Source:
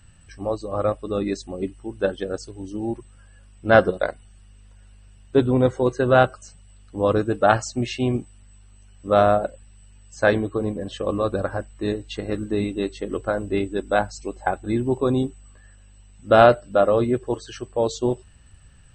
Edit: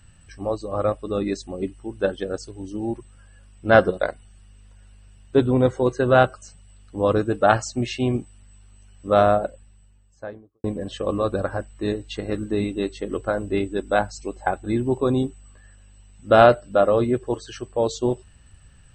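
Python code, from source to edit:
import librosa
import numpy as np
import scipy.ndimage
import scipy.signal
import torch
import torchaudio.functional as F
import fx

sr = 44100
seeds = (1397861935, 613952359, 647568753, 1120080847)

y = fx.studio_fade_out(x, sr, start_s=9.23, length_s=1.41)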